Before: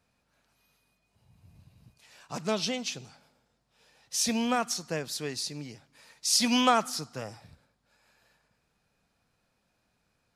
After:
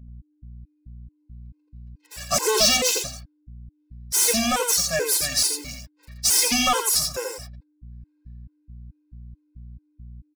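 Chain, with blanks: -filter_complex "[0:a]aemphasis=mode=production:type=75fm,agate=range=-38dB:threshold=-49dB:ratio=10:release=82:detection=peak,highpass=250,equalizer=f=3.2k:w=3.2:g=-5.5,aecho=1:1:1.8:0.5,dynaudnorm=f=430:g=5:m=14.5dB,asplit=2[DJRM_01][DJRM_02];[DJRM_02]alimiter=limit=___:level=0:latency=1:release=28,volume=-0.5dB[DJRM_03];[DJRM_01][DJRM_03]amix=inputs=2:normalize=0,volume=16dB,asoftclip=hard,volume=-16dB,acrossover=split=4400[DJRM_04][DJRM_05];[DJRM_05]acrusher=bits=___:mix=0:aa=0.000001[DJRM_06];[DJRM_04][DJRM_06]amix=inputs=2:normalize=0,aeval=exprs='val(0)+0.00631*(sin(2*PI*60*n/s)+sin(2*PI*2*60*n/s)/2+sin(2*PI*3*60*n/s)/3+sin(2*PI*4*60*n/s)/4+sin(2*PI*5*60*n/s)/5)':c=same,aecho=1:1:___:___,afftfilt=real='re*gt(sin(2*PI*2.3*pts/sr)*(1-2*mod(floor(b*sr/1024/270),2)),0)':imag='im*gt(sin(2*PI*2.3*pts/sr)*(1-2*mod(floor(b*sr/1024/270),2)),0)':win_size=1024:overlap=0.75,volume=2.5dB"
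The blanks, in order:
-12dB, 6, 85, 0.562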